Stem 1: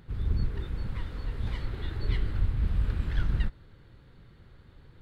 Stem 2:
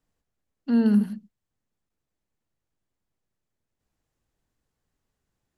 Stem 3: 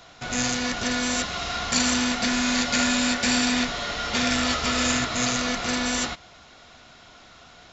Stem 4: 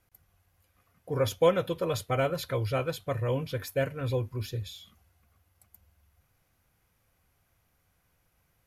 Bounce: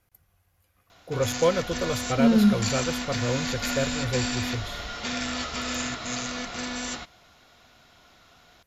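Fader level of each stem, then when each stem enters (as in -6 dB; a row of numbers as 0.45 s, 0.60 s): -15.5 dB, +1.0 dB, -7.0 dB, +1.0 dB; 1.45 s, 1.50 s, 0.90 s, 0.00 s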